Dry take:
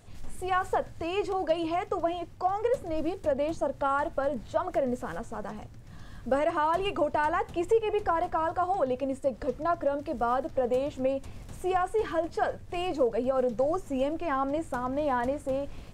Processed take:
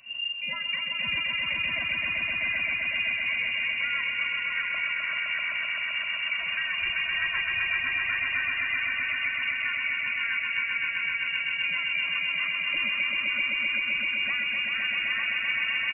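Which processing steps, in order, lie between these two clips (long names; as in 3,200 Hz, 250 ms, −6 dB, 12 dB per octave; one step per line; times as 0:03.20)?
comb filter 2.3 ms, depth 85%
downward compressor, threshold −30 dBFS, peak gain reduction 15 dB
voice inversion scrambler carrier 2,800 Hz
echo that builds up and dies away 129 ms, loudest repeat 5, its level −4 dB
level −1.5 dB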